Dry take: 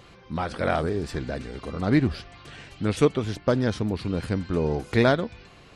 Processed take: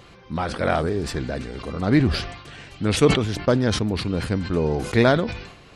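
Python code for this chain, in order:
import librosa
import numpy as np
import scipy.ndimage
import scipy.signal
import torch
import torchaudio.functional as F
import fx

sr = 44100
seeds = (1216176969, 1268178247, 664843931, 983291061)

y = fx.sustainer(x, sr, db_per_s=71.0)
y = y * librosa.db_to_amplitude(2.5)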